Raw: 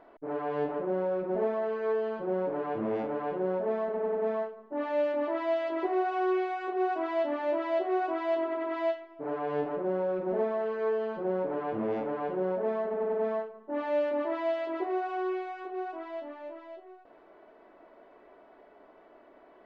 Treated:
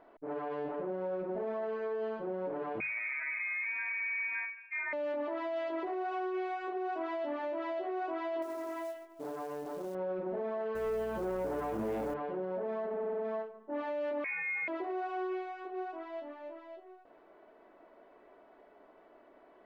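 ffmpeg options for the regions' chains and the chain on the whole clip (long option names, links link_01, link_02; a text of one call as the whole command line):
ffmpeg -i in.wav -filter_complex "[0:a]asettb=1/sr,asplit=3[link_01][link_02][link_03];[link_01]atrim=end=2.804[link_04];[link_02]atrim=start=2.8:end=4.93,asetpts=PTS-STARTPTS,afade=type=in:duration=0.004:curve=qsin,afade=type=out:start_time=2.126:duration=0.004:curve=qsin,lowpass=frequency=2300:width_type=q:width=0.5098,lowpass=frequency=2300:width_type=q:width=0.6013,lowpass=frequency=2300:width_type=q:width=0.9,lowpass=frequency=2300:width_type=q:width=2.563,afreqshift=-2700,aecho=1:1:3.2:0.87,atrim=end_sample=93933[link_05];[link_03]atrim=start=4.926[link_06];[link_04][link_05]acrossfade=duration=0.004:curve1=hsin:curve2=qsin[link_07];[link_07][link_06]acrossfade=duration=0.004:curve1=qsin:curve2=hsin,asettb=1/sr,asplit=3[link_08][link_09][link_10];[link_08]atrim=end=8.424[link_11];[link_09]atrim=start=8.42:end=9.95,asetpts=PTS-STARTPTS,afade=type=in:duration=0.004:curve=qsin,afade=type=out:start_time=1.526:duration=0.004:curve=qsin,highshelf=frequency=3700:gain=-10.5,acompressor=threshold=-32dB:ratio=8:attack=3.2:release=140:knee=1:detection=peak,acrusher=bits=5:mode=log:mix=0:aa=0.000001[link_12];[link_10]atrim=start=9.946[link_13];[link_11][link_12]acrossfade=duration=0.004:curve1=hsin:curve2=qsin[link_14];[link_14][link_13]acrossfade=duration=0.004:curve1=qsin:curve2=hsin,asettb=1/sr,asplit=3[link_15][link_16][link_17];[link_15]atrim=end=10.754[link_18];[link_16]atrim=start=10.75:end=12.14,asetpts=PTS-STARTPTS,afade=type=in:duration=0.004:curve=qsin,afade=type=out:start_time=1.386:duration=0.004:curve=qsin,acrusher=bits=6:mode=log:mix=0:aa=0.000001,aeval=exprs='0.0944*sin(PI/2*1.41*val(0)/0.0944)':channel_layout=same,aeval=exprs='val(0)+0.00794*(sin(2*PI*60*n/s)+sin(2*PI*2*60*n/s)/2+sin(2*PI*3*60*n/s)/3+sin(2*PI*4*60*n/s)/4+sin(2*PI*5*60*n/s)/5)':channel_layout=same[link_19];[link_17]atrim=start=12.136[link_20];[link_18][link_19]acrossfade=duration=0.004:curve1=hsin:curve2=qsin[link_21];[link_21][link_20]acrossfade=duration=0.004:curve1=qsin:curve2=hsin,asettb=1/sr,asplit=3[link_22][link_23][link_24];[link_22]atrim=end=14.244[link_25];[link_23]atrim=start=14.24:end=14.68,asetpts=PTS-STARTPTS,afade=type=in:duration=0.004:curve=qsin,afade=type=out:start_time=0.436:duration=0.004:curve=qsin,asplit=2[link_26][link_27];[link_27]adelay=24,volume=-6.5dB[link_28];[link_26][link_28]amix=inputs=2:normalize=0,atrim=end_sample=19404,lowpass=frequency=2400:width_type=q:width=0.5098,lowpass=frequency=2400:width_type=q:width=0.6013,lowpass=frequency=2400:width_type=q:width=0.9,lowpass=frequency=2400:width_type=q:width=2.563,afreqshift=-2800[link_29];[link_24]atrim=start=14.676[link_30];[link_25][link_29]acrossfade=duration=0.004:curve1=hsin:curve2=qsin[link_31];[link_31][link_30]acrossfade=duration=0.004:curve1=qsin:curve2=hsin,bandreject=frequency=50:width_type=h:width=6,bandreject=frequency=100:width_type=h:width=6,bandreject=frequency=150:width_type=h:width=6,alimiter=level_in=2dB:limit=-24dB:level=0:latency=1:release=17,volume=-2dB,volume=-3.5dB" out.wav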